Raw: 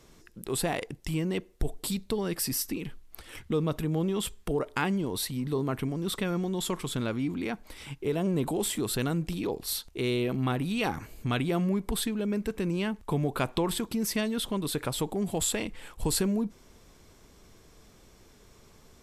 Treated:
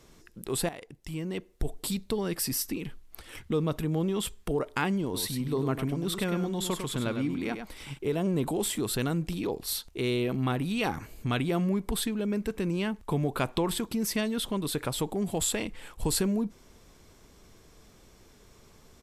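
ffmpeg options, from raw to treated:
-filter_complex "[0:a]asplit=3[s0][s1][s2];[s0]afade=t=out:st=5.13:d=0.02[s3];[s1]aecho=1:1:101:0.422,afade=t=in:st=5.13:d=0.02,afade=t=out:st=7.97:d=0.02[s4];[s2]afade=t=in:st=7.97:d=0.02[s5];[s3][s4][s5]amix=inputs=3:normalize=0,asplit=2[s6][s7];[s6]atrim=end=0.69,asetpts=PTS-STARTPTS,afade=t=out:st=0.686:d=0.004:c=hsin:silence=0.211349[s8];[s7]atrim=start=0.69,asetpts=PTS-STARTPTS,afade=t=in:d=1.14:silence=0.211349[s9];[s8][s9]concat=n=2:v=0:a=1"

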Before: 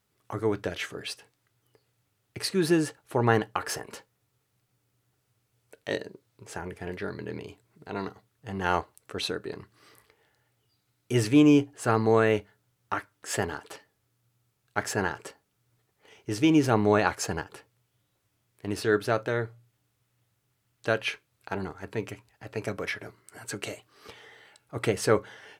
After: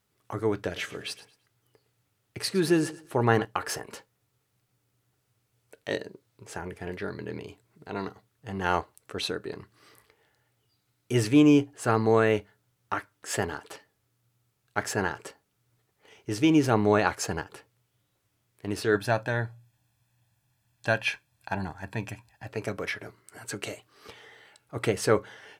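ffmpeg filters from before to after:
-filter_complex "[0:a]asettb=1/sr,asplit=3[s0][s1][s2];[s0]atrim=end=0.574[s3];[s1]atrim=start=0.57:end=3.45,asetpts=PTS-STARTPTS,afade=t=in:d=0.004:c=qsin,afade=t=out:st=2.876:d=0.004:c=qsin,aecho=1:1:111|222|333:0.141|0.0381|0.0103,atrim=end_sample=127008[s4];[s2]atrim=start=3.446[s5];[s3][s4]acrossfade=d=0.004:c1=hsin:c2=qsin[s6];[s6][s5]acrossfade=d=0.004:c1=qsin:c2=hsin,asettb=1/sr,asplit=3[s7][s8][s9];[s7]atrim=end=18.954[s10];[s8]atrim=start=18.95:end=22.49,asetpts=PTS-STARTPTS,afade=t=in:d=0.004:c=qsin,afade=t=out:st=3.536:d=0.004:c=qsin,aecho=1:1:1.2:0.65,atrim=end_sample=156114[s11];[s9]atrim=start=22.486[s12];[s10][s11]acrossfade=d=0.004:c1=hsin:c2=qsin[s13];[s13][s12]acrossfade=d=0.004:c1=qsin:c2=hsin"

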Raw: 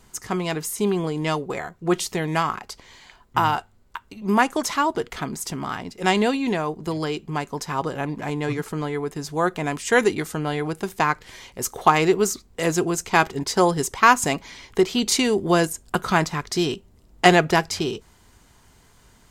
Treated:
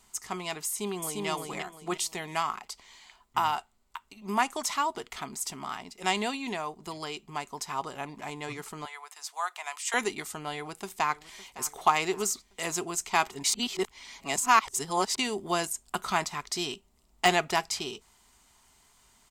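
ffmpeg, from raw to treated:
-filter_complex "[0:a]asplit=2[s0][s1];[s1]afade=t=in:st=0.67:d=0.01,afade=t=out:st=1.27:d=0.01,aecho=0:1:350|700|1050|1400:0.794328|0.238298|0.0714895|0.0214469[s2];[s0][s2]amix=inputs=2:normalize=0,asettb=1/sr,asplit=3[s3][s4][s5];[s3]atrim=end=8.854[s6];[s4]atrim=start=8.85:end=9.94,asetpts=PTS-STARTPTS,afade=t=in:d=0.004:c=qsin,afade=t=out:st=1.086:d=0.004:c=qsin,highpass=f=770:w=0.5412,highpass=f=770:w=1.3066[s7];[s5]atrim=start=9.936[s8];[s6][s7]acrossfade=d=0.004:c1=hsin:c2=qsin[s9];[s9][s8]acrossfade=d=0.004:c1=qsin:c2=hsin,asplit=2[s10][s11];[s11]afade=t=in:st=10.54:d=0.01,afade=t=out:st=11.66:d=0.01,aecho=0:1:560|1120|1680|2240:0.141254|0.0706269|0.0353134|0.0176567[s12];[s10][s12]amix=inputs=2:normalize=0,asplit=3[s13][s14][s15];[s13]atrim=end=13.442[s16];[s14]atrim=start=13.438:end=15.182,asetpts=PTS-STARTPTS,areverse[s17];[s15]atrim=start=15.178[s18];[s16][s17]acrossfade=d=0.004:c1=hsin:c2=hsin[s19];[s19][s18]acrossfade=d=0.004:c1=hsin:c2=hsin,lowshelf=f=380:g=-9,deesser=0.35,equalizer=f=100:t=o:w=0.33:g=-11,equalizer=f=160:t=o:w=0.33:g=-5,equalizer=f=315:t=o:w=0.33:g=-6,equalizer=f=500:t=o:w=0.33:g=-10,equalizer=f=1600:t=o:w=0.33:g=-7,equalizer=f=8000:t=o:w=0.33:g=4,volume=0.631"

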